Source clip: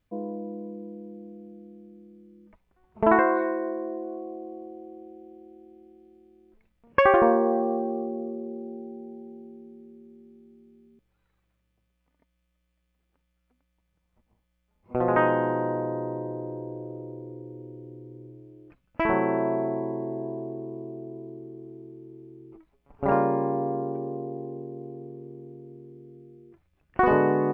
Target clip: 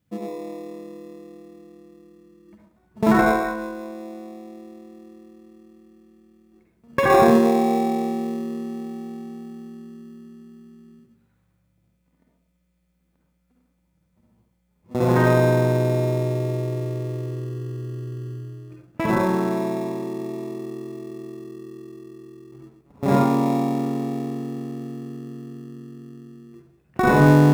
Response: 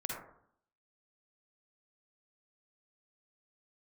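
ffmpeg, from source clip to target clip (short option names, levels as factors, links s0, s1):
-filter_complex "[0:a]highpass=150,bass=f=250:g=13,treble=f=4000:g=7[s0];[1:a]atrim=start_sample=2205[s1];[s0][s1]afir=irnorm=-1:irlink=0,asplit=2[s2][s3];[s3]acrusher=samples=29:mix=1:aa=0.000001,volume=0.282[s4];[s2][s4]amix=inputs=2:normalize=0"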